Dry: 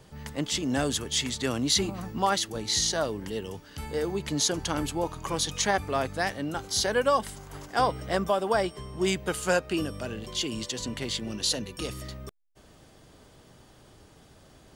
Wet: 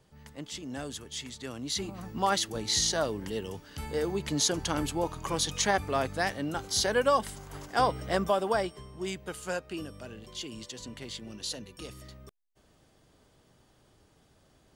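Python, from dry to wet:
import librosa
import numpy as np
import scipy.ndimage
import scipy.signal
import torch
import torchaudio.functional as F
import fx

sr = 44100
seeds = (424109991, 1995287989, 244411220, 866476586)

y = fx.gain(x, sr, db=fx.line((1.55, -11.0), (2.34, -1.0), (8.41, -1.0), (9.04, -9.0)))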